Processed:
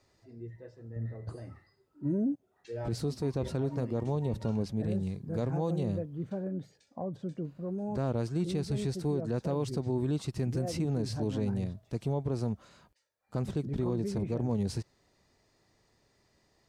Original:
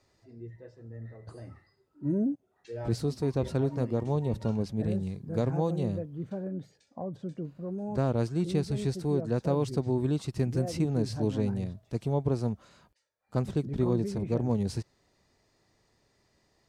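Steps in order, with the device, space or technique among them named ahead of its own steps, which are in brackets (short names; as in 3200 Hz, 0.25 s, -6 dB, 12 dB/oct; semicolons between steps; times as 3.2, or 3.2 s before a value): clipper into limiter (hard clip -17 dBFS, distortion -43 dB; limiter -23 dBFS, peak gain reduction 6 dB); 0.96–1.36 low shelf 450 Hz +7 dB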